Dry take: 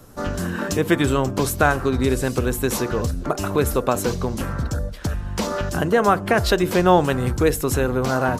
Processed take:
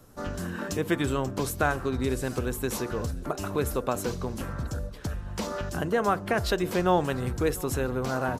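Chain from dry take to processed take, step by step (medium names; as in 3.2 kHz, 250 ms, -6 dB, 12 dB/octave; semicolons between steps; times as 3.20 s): feedback delay 697 ms, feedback 53%, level -23 dB; trim -8 dB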